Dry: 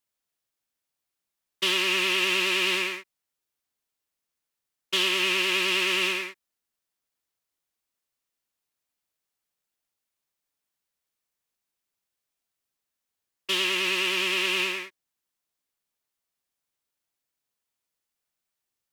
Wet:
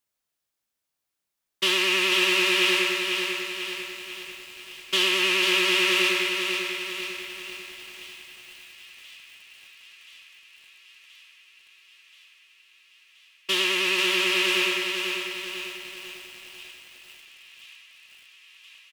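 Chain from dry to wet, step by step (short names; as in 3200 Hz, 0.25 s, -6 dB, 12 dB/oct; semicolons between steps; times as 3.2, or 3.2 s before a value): doubler 19 ms -11 dB; thin delay 1.028 s, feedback 76%, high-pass 1800 Hz, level -20 dB; lo-fi delay 0.494 s, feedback 55%, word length 8-bit, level -5 dB; gain +1.5 dB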